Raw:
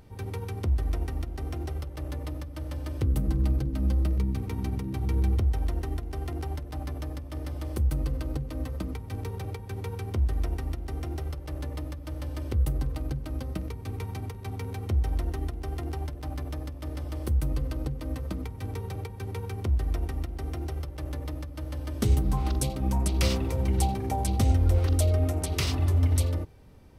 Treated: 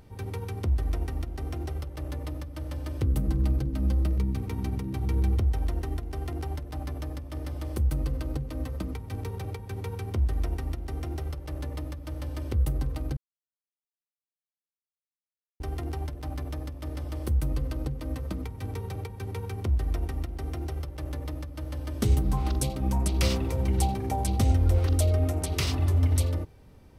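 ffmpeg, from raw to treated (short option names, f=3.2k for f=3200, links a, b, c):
-filter_complex "[0:a]asplit=3[a][b][c];[a]atrim=end=13.17,asetpts=PTS-STARTPTS,afade=t=out:st=13.166:d=0.004:c=hsin[d];[b]atrim=start=13.17:end=15.6,asetpts=PTS-STARTPTS,volume=0[e];[c]atrim=start=15.6,asetpts=PTS-STARTPTS,afade=t=in:d=0.004:c=hsin[f];[d][e][f]concat=n=3:v=0:a=1"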